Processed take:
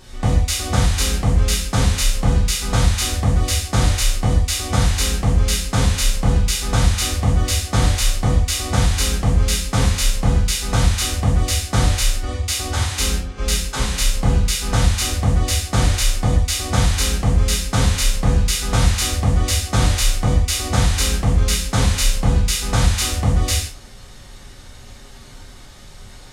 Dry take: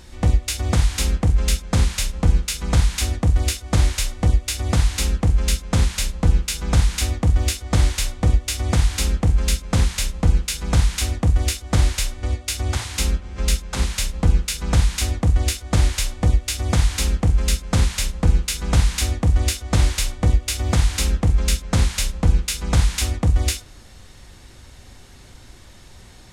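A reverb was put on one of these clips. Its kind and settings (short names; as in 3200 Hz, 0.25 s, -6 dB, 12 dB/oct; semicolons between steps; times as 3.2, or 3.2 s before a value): non-linear reverb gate 0.2 s falling, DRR -6 dB; gain -2.5 dB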